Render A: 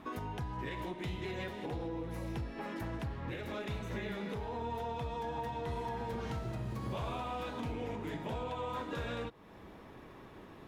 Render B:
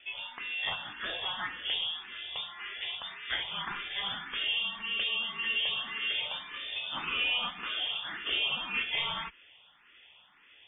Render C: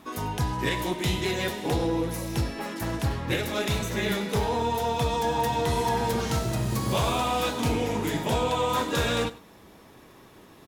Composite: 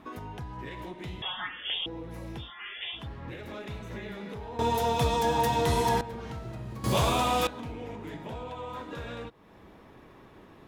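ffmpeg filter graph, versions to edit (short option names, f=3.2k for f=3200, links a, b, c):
-filter_complex "[1:a]asplit=2[a][b];[2:a]asplit=2[c][d];[0:a]asplit=5[e][f][g][h][i];[e]atrim=end=1.222[j];[a]atrim=start=1.218:end=1.862[k];[f]atrim=start=1.858:end=2.52[l];[b]atrim=start=2.36:end=3.08[m];[g]atrim=start=2.92:end=4.592[n];[c]atrim=start=4.588:end=6.012[o];[h]atrim=start=6.008:end=6.842[p];[d]atrim=start=6.838:end=7.472[q];[i]atrim=start=7.468[r];[j][k]acrossfade=d=0.004:c1=hsin:c2=hsin[s];[s][l]acrossfade=d=0.004:c1=hsin:c2=hsin[t];[t][m]acrossfade=d=0.16:c1=tri:c2=tri[u];[u][n]acrossfade=d=0.16:c1=tri:c2=tri[v];[v][o]acrossfade=d=0.004:c1=hsin:c2=hsin[w];[w][p]acrossfade=d=0.004:c1=hsin:c2=hsin[x];[x][q]acrossfade=d=0.004:c1=hsin:c2=hsin[y];[y][r]acrossfade=d=0.004:c1=hsin:c2=hsin"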